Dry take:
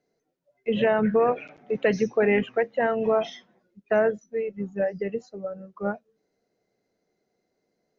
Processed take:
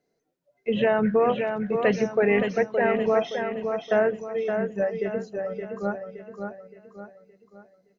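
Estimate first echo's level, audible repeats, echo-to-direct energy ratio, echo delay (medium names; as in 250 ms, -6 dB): -6.0 dB, 4, -5.0 dB, 569 ms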